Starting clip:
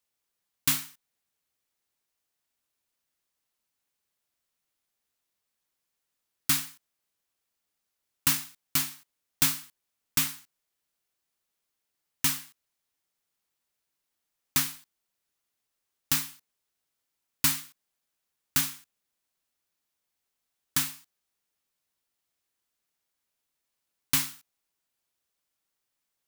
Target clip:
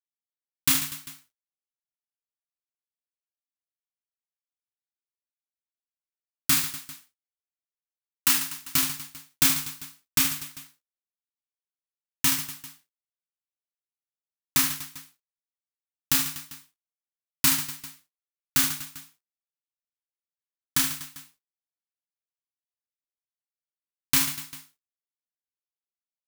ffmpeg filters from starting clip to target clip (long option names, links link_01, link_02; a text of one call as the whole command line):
ffmpeg -i in.wav -filter_complex "[0:a]asettb=1/sr,asplit=3[link_01][link_02][link_03];[link_01]atrim=end=6.544[link_04];[link_02]atrim=start=6.54:end=8.38,asetpts=PTS-STARTPTS,afade=type=in:duration=0.004:curve=qsin,afade=type=out:start_time=1.836:duration=0.004:curve=qsin,highpass=frequency=380:poles=1[link_05];[link_03]atrim=start=8.376[link_06];[link_04][link_05]acrossfade=duration=0.004:curve1=hsin:curve2=qsin[link_07];[link_07][link_06]acrossfade=duration=0.004:curve1=qsin:curve2=hsin,aeval=exprs='sgn(val(0))*max(abs(val(0))-0.00355,0)':channel_layout=same,aecho=1:1:30|75|142.5|243.8|395.6:0.631|0.398|0.251|0.158|0.1,volume=2.5dB" out.wav